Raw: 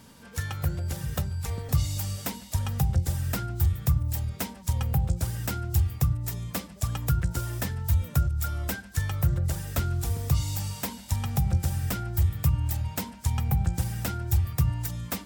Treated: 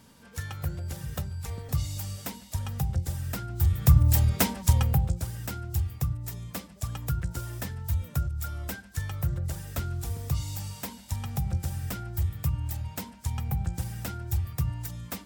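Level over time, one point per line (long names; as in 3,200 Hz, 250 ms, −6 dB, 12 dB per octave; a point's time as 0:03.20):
0:03.46 −4 dB
0:04.02 +8 dB
0:04.61 +8 dB
0:05.26 −4.5 dB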